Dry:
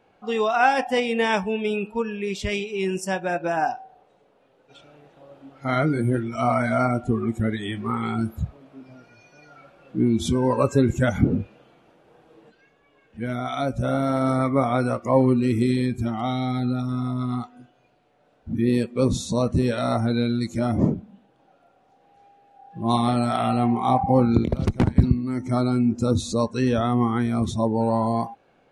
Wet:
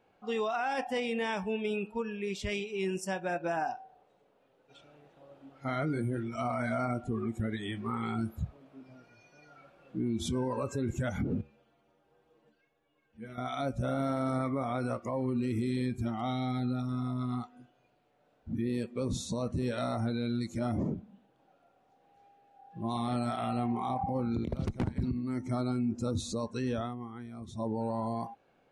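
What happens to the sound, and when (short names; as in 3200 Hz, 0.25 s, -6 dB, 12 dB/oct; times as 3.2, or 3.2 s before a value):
11.41–13.38 metallic resonator 70 Hz, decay 0.23 s, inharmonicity 0.008
26.68–27.75 dip -13.5 dB, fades 0.28 s
whole clip: limiter -16.5 dBFS; gain -7.5 dB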